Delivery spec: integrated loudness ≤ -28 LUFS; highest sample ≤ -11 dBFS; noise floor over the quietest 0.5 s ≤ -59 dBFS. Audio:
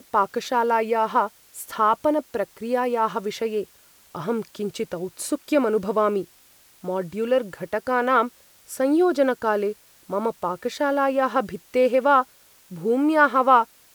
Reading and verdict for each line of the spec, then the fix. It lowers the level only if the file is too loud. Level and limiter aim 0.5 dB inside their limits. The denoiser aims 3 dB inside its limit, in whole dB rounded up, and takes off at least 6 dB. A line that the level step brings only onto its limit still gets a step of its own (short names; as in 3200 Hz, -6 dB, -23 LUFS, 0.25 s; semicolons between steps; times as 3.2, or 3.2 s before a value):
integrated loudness -23.0 LUFS: fail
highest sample -4.0 dBFS: fail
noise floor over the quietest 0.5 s -55 dBFS: fail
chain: gain -5.5 dB; limiter -11.5 dBFS